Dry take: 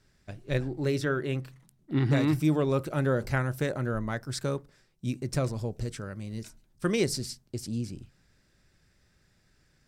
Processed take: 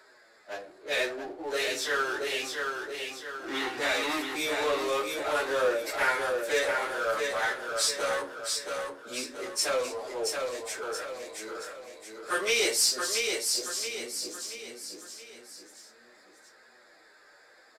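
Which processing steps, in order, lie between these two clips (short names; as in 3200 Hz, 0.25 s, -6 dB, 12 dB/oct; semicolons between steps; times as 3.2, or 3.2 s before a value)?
Wiener smoothing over 15 samples; HPF 470 Hz 24 dB/oct; high shelf 2100 Hz +9.5 dB; plain phase-vocoder stretch 1.8×; flange 0.54 Hz, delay 7.6 ms, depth 3.9 ms, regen +36%; on a send: feedback echo 0.676 s, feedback 34%, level -6 dB; on the sum: shoebox room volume 150 m³, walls furnished, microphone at 0.52 m; power-law curve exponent 0.7; downsampling 32000 Hz; gain +4.5 dB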